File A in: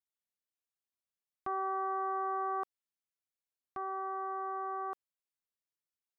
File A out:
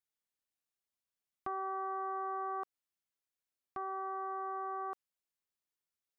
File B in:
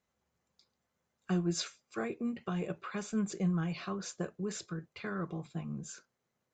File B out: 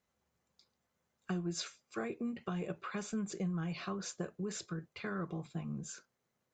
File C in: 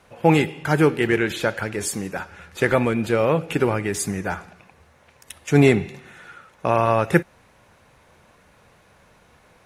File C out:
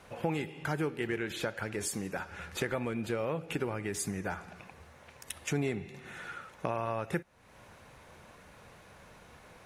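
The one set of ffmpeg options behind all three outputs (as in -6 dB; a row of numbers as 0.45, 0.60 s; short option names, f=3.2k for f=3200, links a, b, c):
-af "acompressor=threshold=-35dB:ratio=3"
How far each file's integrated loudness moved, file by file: -3.0, -3.5, -14.5 LU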